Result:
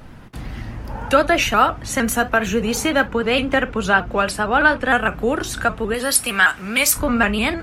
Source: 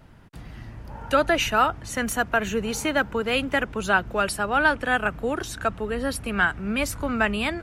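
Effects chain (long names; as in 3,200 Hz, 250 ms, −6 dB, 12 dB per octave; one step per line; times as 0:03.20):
0:03.01–0:04.91: high-shelf EQ 9,600 Hz −10.5 dB
in parallel at +1 dB: downward compressor, threshold −34 dBFS, peak gain reduction 18 dB
0:05.94–0:06.96: on the sum: spectral tilt +3.5 dB per octave
convolution reverb, pre-delay 4 ms, DRR 10 dB
pitch modulation by a square or saw wave saw up 6.5 Hz, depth 100 cents
level +3 dB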